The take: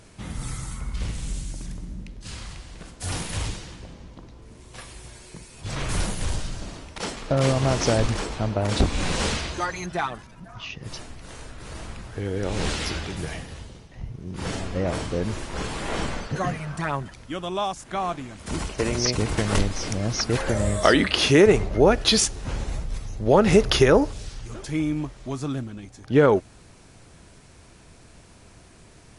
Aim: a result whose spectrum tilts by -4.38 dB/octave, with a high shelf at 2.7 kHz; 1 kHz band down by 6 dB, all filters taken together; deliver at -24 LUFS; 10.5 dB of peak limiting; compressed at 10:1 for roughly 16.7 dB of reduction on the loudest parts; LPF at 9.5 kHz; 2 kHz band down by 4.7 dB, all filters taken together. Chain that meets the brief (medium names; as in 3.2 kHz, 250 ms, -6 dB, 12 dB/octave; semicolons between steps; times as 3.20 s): low-pass 9.5 kHz; peaking EQ 1 kHz -7.5 dB; peaking EQ 2 kHz -5.5 dB; treble shelf 2.7 kHz +4 dB; compression 10:1, threshold -30 dBFS; trim +13 dB; peak limiter -12 dBFS